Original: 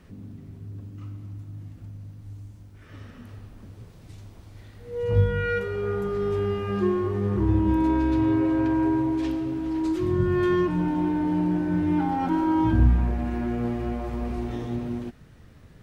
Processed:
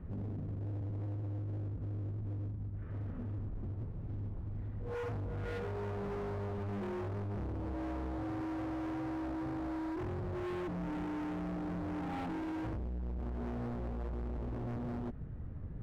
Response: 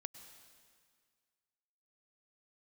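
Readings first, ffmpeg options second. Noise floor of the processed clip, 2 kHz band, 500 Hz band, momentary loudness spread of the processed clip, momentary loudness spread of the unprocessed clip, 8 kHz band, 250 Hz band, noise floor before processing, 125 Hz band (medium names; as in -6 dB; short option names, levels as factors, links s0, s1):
-43 dBFS, -13.5 dB, -14.0 dB, 4 LU, 20 LU, no reading, -15.0 dB, -49 dBFS, -10.5 dB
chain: -af "lowpass=1200,lowshelf=f=200:g=11.5,acompressor=threshold=0.0501:ratio=5,asoftclip=type=hard:threshold=0.0168,volume=0.841"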